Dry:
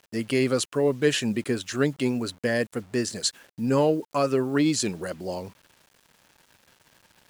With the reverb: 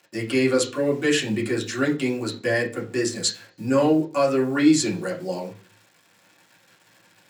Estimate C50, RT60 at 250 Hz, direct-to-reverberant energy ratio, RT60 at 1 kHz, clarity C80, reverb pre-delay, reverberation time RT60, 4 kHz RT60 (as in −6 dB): 12.0 dB, 0.50 s, −3.5 dB, 0.35 s, 18.0 dB, 3 ms, 0.40 s, 0.40 s